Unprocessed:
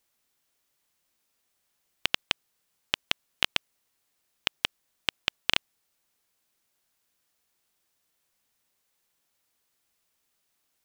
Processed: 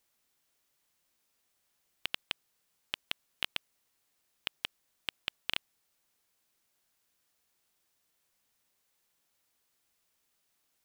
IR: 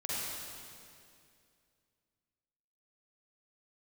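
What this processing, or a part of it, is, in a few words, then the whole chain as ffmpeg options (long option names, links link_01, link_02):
limiter into clipper: -af "alimiter=limit=-9.5dB:level=0:latency=1:release=14,asoftclip=type=hard:threshold=-12.5dB,volume=-1dB"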